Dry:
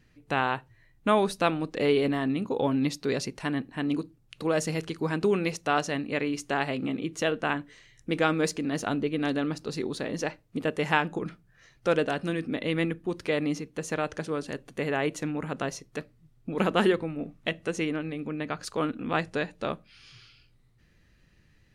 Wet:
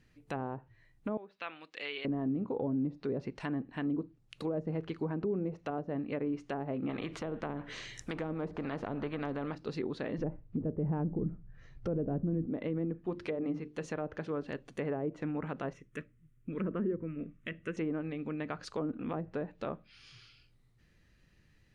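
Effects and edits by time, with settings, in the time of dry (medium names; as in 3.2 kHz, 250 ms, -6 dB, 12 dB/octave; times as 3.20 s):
1.17–2.05 s: band-pass filter 2.7 kHz, Q 1.2
6.89–9.55 s: spectrum-flattening compressor 2:1
10.18–12.47 s: RIAA curve playback
12.97–13.86 s: hum notches 50/100/150/200/250/300/350/400/450 Hz
15.73–17.77 s: static phaser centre 1.9 kHz, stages 4
whole clip: low-pass that closes with the level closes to 500 Hz, closed at -23 dBFS; peak limiter -21 dBFS; trim -4 dB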